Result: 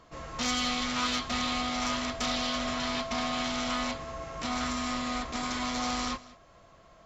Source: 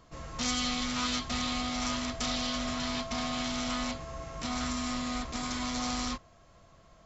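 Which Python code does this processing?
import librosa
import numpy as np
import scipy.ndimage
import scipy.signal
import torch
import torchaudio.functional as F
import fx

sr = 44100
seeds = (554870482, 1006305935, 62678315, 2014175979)

p1 = fx.bass_treble(x, sr, bass_db=-6, treble_db=-5)
p2 = fx.clip_asym(p1, sr, top_db=-28.5, bottom_db=-25.5)
p3 = p1 + (p2 * 10.0 ** (-5.0 / 20.0))
y = p3 + 10.0 ** (-20.0 / 20.0) * np.pad(p3, (int(192 * sr / 1000.0), 0))[:len(p3)]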